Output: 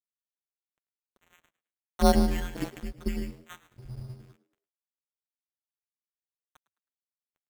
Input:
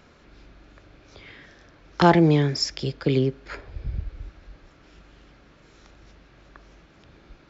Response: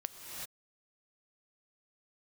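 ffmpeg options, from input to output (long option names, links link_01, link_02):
-filter_complex "[0:a]asplit=2[link_01][link_02];[link_02]aecho=0:1:149:0.211[link_03];[link_01][link_03]amix=inputs=2:normalize=0,afftfilt=real='hypot(re,im)*cos(PI*b)':imag='0':win_size=1024:overlap=0.75,equalizer=frequency=4000:width_type=o:width=0.27:gain=-2.5,afreqshift=-130,acrossover=split=700[link_04][link_05];[link_04]aeval=exprs='val(0)*(1-0.5/2+0.5/2*cos(2*PI*1*n/s))':channel_layout=same[link_06];[link_05]aeval=exprs='val(0)*(1-0.5/2-0.5/2*cos(2*PI*1*n/s))':channel_layout=same[link_07];[link_06][link_07]amix=inputs=2:normalize=0,adynamicequalizer=threshold=0.0316:dfrequency=210:dqfactor=1.8:tfrequency=210:tqfactor=1.8:attack=5:release=100:ratio=0.375:range=1.5:mode=cutabove:tftype=bell,acrusher=samples=9:mix=1:aa=0.000001,aeval=exprs='sgn(val(0))*max(abs(val(0))-0.00447,0)':channel_layout=same,asplit=2[link_08][link_09];[link_09]asplit=3[link_10][link_11][link_12];[link_10]adelay=106,afreqshift=91,volume=-19dB[link_13];[link_11]adelay=212,afreqshift=182,volume=-28.9dB[link_14];[link_12]adelay=318,afreqshift=273,volume=-38.8dB[link_15];[link_13][link_14][link_15]amix=inputs=3:normalize=0[link_16];[link_08][link_16]amix=inputs=2:normalize=0,volume=-2dB"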